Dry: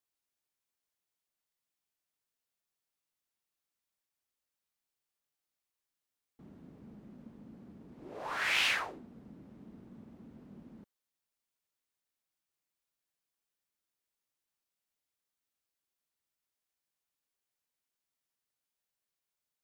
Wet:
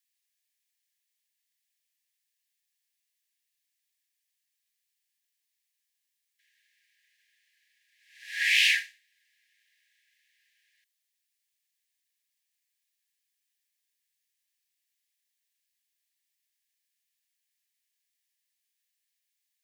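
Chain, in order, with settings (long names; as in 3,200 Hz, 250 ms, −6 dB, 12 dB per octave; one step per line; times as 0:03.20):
linear-phase brick-wall high-pass 1,600 Hz
level +7.5 dB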